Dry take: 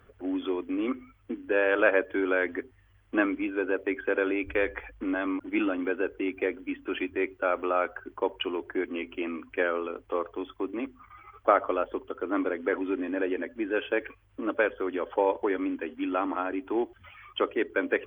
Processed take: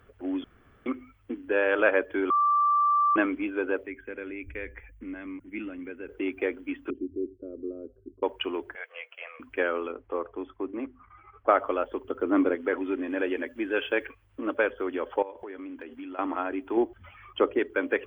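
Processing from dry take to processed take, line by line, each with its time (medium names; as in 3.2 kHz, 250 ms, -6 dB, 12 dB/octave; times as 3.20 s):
0.44–0.86 s: room tone
2.30–3.16 s: bleep 1.17 kHz -19.5 dBFS
3.86–6.09 s: FFT filter 180 Hz 0 dB, 320 Hz -10 dB, 460 Hz -12 dB, 690 Hz -17 dB, 1.3 kHz -16 dB, 2.1 kHz -5 dB, 4.4 kHz -20 dB, 6.2 kHz -3 dB
6.90–8.23 s: inverse Chebyshev low-pass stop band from 770 Hz
8.75–9.40 s: rippled Chebyshev high-pass 470 Hz, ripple 6 dB
9.92–11.49 s: distance through air 500 m
12.04–12.55 s: peaking EQ 160 Hz +8 dB 3 oct
13.10–14.06 s: treble shelf 2.9 kHz +9 dB
15.22–16.19 s: compression, threshold -37 dBFS
16.77–17.59 s: tilt shelf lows +5 dB, about 1.4 kHz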